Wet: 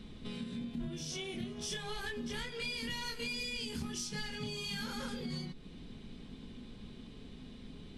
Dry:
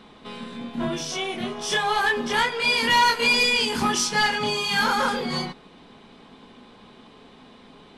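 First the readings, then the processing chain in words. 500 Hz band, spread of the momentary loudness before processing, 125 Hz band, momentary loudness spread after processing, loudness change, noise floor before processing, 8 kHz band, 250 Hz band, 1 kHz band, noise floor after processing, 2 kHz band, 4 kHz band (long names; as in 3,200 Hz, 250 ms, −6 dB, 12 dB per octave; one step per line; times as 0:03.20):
−16.5 dB, 15 LU, −6.5 dB, 13 LU, −18.0 dB, −50 dBFS, −14.0 dB, −10.0 dB, −26.5 dB, −51 dBFS, −20.0 dB, −16.0 dB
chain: guitar amp tone stack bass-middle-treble 10-0-1
downward compressor 6 to 1, threshold −55 dBFS, peak gain reduction 16 dB
level +17.5 dB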